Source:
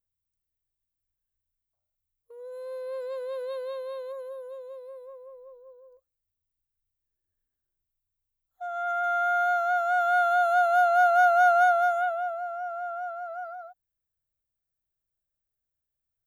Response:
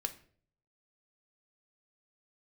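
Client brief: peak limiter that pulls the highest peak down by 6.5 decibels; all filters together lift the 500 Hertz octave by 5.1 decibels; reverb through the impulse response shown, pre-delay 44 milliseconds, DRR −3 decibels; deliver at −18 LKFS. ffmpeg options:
-filter_complex "[0:a]equalizer=frequency=500:width_type=o:gain=8.5,alimiter=limit=-15.5dB:level=0:latency=1,asplit=2[link_01][link_02];[1:a]atrim=start_sample=2205,adelay=44[link_03];[link_02][link_03]afir=irnorm=-1:irlink=0,volume=2.5dB[link_04];[link_01][link_04]amix=inputs=2:normalize=0,volume=2dB"

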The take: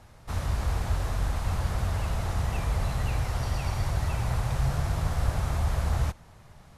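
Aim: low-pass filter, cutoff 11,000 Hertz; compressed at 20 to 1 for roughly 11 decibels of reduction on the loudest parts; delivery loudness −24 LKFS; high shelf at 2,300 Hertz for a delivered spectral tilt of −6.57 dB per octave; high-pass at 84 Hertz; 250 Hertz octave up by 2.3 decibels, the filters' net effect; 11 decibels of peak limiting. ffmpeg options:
ffmpeg -i in.wav -af "highpass=84,lowpass=11000,equalizer=frequency=250:width_type=o:gain=4.5,highshelf=frequency=2300:gain=-7.5,acompressor=threshold=-36dB:ratio=20,volume=24.5dB,alimiter=limit=-15.5dB:level=0:latency=1" out.wav

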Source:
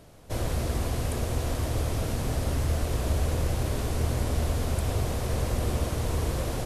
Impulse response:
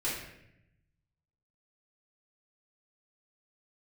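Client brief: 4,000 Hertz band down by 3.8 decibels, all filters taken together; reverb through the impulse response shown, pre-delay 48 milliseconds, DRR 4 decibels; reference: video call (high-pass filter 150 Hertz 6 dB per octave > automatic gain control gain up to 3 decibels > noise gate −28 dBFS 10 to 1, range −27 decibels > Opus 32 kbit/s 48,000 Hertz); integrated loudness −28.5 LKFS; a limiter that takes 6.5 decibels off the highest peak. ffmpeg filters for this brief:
-filter_complex "[0:a]equalizer=frequency=4000:width_type=o:gain=-5,alimiter=limit=-21.5dB:level=0:latency=1,asplit=2[link_01][link_02];[1:a]atrim=start_sample=2205,adelay=48[link_03];[link_02][link_03]afir=irnorm=-1:irlink=0,volume=-10dB[link_04];[link_01][link_04]amix=inputs=2:normalize=0,highpass=frequency=150:poles=1,dynaudnorm=maxgain=3dB,agate=range=-27dB:threshold=-28dB:ratio=10,volume=13.5dB" -ar 48000 -c:a libopus -b:a 32k

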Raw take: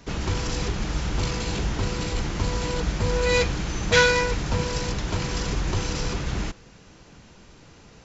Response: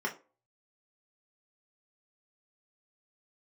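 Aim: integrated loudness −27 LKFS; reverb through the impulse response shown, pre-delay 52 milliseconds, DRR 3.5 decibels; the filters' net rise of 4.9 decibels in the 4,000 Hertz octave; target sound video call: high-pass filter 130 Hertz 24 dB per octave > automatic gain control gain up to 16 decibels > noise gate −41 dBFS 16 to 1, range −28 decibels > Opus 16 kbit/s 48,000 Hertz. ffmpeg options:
-filter_complex "[0:a]equalizer=frequency=4000:width_type=o:gain=6,asplit=2[link_01][link_02];[1:a]atrim=start_sample=2205,adelay=52[link_03];[link_02][link_03]afir=irnorm=-1:irlink=0,volume=-9.5dB[link_04];[link_01][link_04]amix=inputs=2:normalize=0,highpass=frequency=130:width=0.5412,highpass=frequency=130:width=1.3066,dynaudnorm=maxgain=16dB,agate=range=-28dB:threshold=-41dB:ratio=16,volume=-4dB" -ar 48000 -c:a libopus -b:a 16k

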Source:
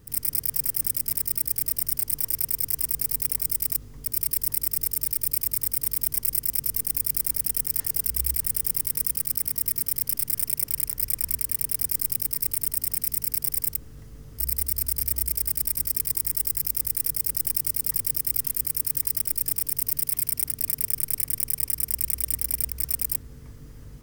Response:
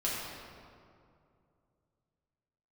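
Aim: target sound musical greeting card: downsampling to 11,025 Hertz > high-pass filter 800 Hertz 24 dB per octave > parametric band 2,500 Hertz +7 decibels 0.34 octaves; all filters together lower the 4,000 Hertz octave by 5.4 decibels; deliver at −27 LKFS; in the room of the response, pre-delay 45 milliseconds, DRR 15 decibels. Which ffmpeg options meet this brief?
-filter_complex "[0:a]equalizer=frequency=4000:width_type=o:gain=-9,asplit=2[link_01][link_02];[1:a]atrim=start_sample=2205,adelay=45[link_03];[link_02][link_03]afir=irnorm=-1:irlink=0,volume=-21.5dB[link_04];[link_01][link_04]amix=inputs=2:normalize=0,aresample=11025,aresample=44100,highpass=frequency=800:width=0.5412,highpass=frequency=800:width=1.3066,equalizer=frequency=2500:width_type=o:width=0.34:gain=7,volume=21.5dB"

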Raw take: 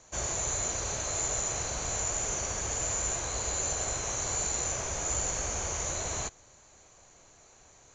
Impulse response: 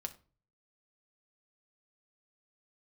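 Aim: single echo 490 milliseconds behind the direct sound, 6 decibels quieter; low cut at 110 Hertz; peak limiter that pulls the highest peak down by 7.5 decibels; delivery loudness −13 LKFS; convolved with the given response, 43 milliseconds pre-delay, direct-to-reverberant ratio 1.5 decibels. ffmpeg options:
-filter_complex "[0:a]highpass=110,alimiter=level_in=3dB:limit=-24dB:level=0:latency=1,volume=-3dB,aecho=1:1:490:0.501,asplit=2[link_01][link_02];[1:a]atrim=start_sample=2205,adelay=43[link_03];[link_02][link_03]afir=irnorm=-1:irlink=0,volume=0.5dB[link_04];[link_01][link_04]amix=inputs=2:normalize=0,volume=18.5dB"

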